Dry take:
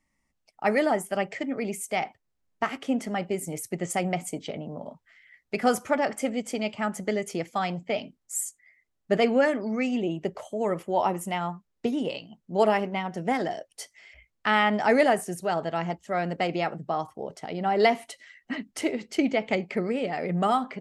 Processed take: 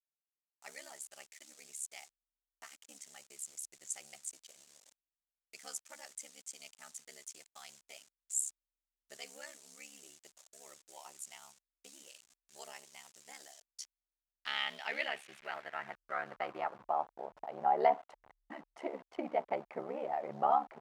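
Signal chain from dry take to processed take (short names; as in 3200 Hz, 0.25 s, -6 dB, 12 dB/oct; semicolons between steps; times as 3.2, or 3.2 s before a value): level-crossing sampler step -37.5 dBFS; ring modulator 35 Hz; band-pass sweep 7300 Hz -> 820 Hz, 13.44–17.02; gain +1 dB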